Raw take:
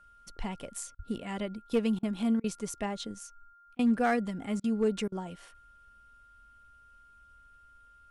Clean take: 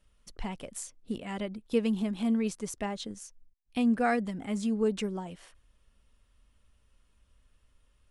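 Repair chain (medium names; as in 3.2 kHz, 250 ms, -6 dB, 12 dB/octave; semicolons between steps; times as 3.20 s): clip repair -19.5 dBFS; band-stop 1.4 kHz, Q 30; 0.96–1.08 s: high-pass 140 Hz 24 dB/octave; interpolate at 0.95/1.99/2.40/3.75/4.60/5.08 s, 39 ms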